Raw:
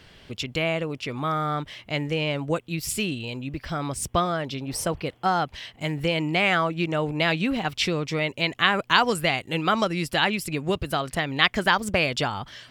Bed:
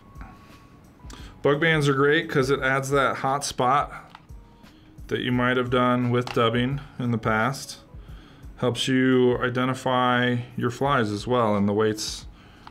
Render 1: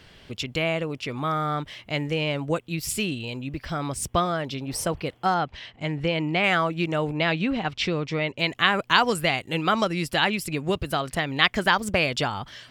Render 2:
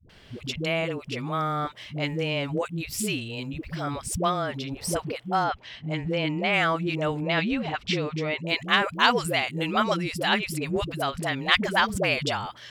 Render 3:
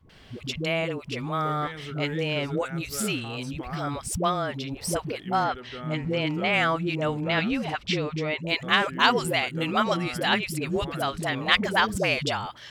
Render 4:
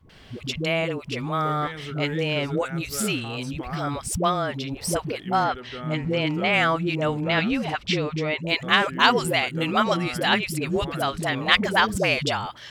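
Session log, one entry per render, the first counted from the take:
5.34–6.44 s: distance through air 110 m; 7.12–8.39 s: distance through air 99 m
Chebyshev shaper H 3 -26 dB, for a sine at -1.5 dBFS; phase dispersion highs, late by 96 ms, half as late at 360 Hz
add bed -18.5 dB
trim +2.5 dB

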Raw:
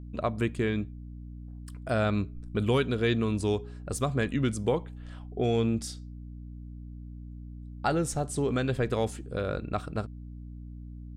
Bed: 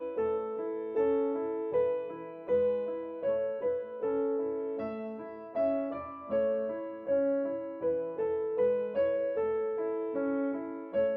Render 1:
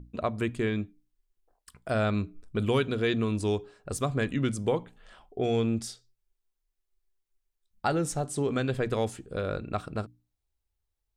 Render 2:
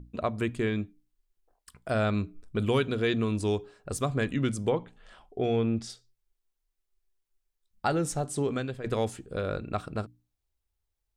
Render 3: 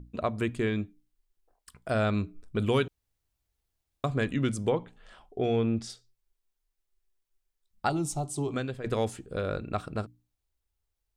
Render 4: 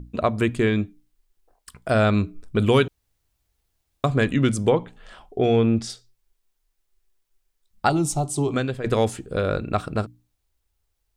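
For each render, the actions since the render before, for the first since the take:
hum notches 60/120/180/240/300 Hz
4.69–5.90 s: low-pass that closes with the level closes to 2.7 kHz, closed at -21.5 dBFS; 8.44–8.84 s: fade out, to -13 dB
2.88–4.04 s: room tone; 7.89–8.54 s: static phaser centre 330 Hz, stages 8
trim +8 dB

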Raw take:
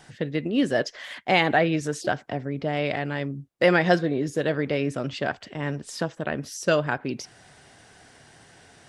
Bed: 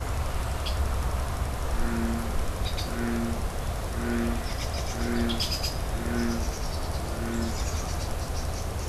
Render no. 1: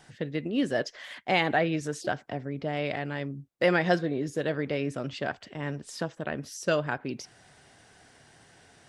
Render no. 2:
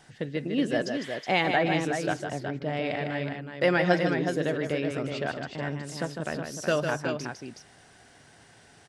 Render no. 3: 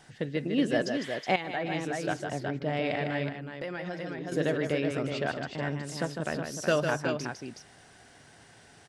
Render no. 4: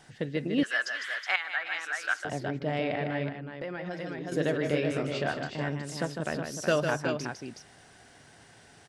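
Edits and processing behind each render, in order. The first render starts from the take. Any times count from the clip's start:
trim -4.5 dB
multi-tap echo 153/369 ms -6.5/-6.5 dB
1.36–2.43 s: fade in linear, from -13.5 dB; 3.29–4.32 s: compression 5:1, threshold -34 dBFS
0.63–2.25 s: resonant high-pass 1.4 kHz, resonance Q 3.4; 2.84–3.91 s: treble shelf 4.5 kHz -11 dB; 4.62–5.64 s: doubling 27 ms -6 dB

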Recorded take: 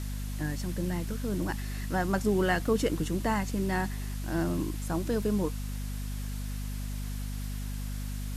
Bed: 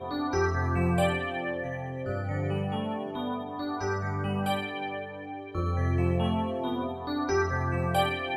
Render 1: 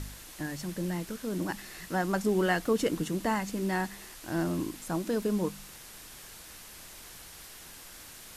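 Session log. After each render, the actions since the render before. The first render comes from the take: de-hum 50 Hz, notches 5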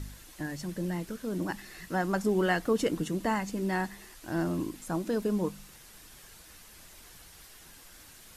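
noise reduction 6 dB, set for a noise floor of -49 dBFS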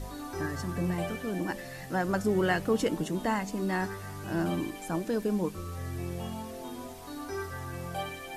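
add bed -10 dB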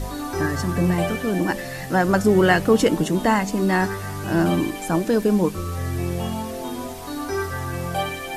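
trim +10.5 dB

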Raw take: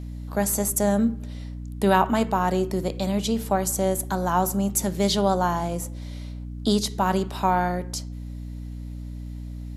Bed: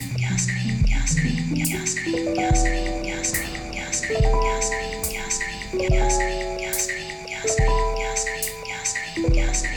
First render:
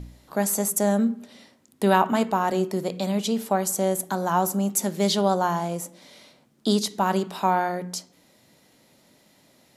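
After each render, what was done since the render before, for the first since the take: de-hum 60 Hz, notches 5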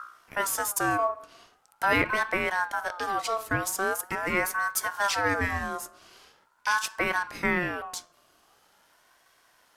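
partial rectifier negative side -3 dB; ring modulator with a swept carrier 1.1 kHz, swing 20%, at 0.43 Hz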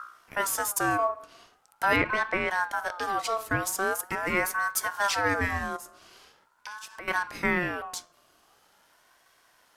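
1.96–2.50 s: distance through air 73 m; 5.76–7.08 s: compression, threshold -38 dBFS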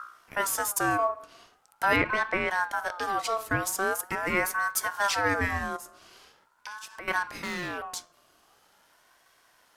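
7.28–7.78 s: hard clipper -30 dBFS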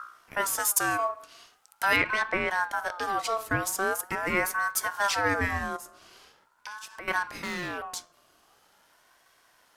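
0.59–2.22 s: tilt shelf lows -5.5 dB, about 1.4 kHz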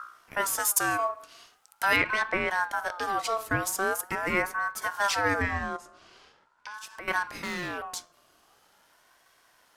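4.42–4.82 s: treble shelf 3.4 kHz -11.5 dB; 5.42–6.74 s: distance through air 77 m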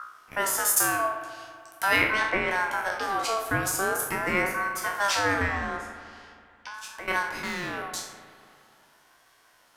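spectral sustain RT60 0.49 s; spring tank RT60 2.4 s, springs 36/55 ms, chirp 70 ms, DRR 8.5 dB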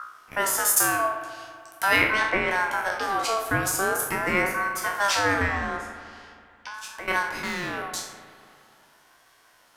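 trim +2 dB

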